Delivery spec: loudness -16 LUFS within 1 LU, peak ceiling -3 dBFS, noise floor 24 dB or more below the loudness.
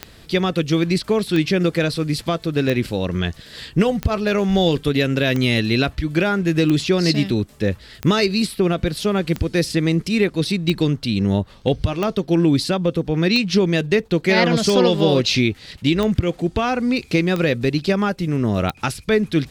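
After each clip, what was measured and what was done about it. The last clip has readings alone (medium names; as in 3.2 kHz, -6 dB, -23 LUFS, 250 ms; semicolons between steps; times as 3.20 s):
clicks found 15; loudness -19.5 LUFS; peak level -3.0 dBFS; loudness target -16.0 LUFS
-> de-click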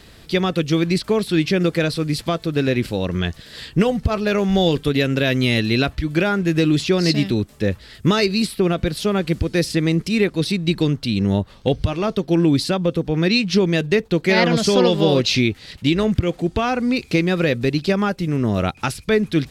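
clicks found 0; loudness -19.5 LUFS; peak level -3.0 dBFS; loudness target -16.0 LUFS
-> trim +3.5 dB; peak limiter -3 dBFS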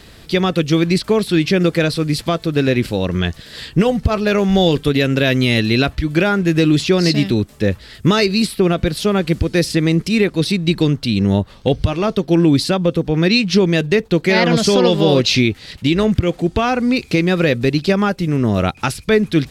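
loudness -16.5 LUFS; peak level -3.0 dBFS; noise floor -43 dBFS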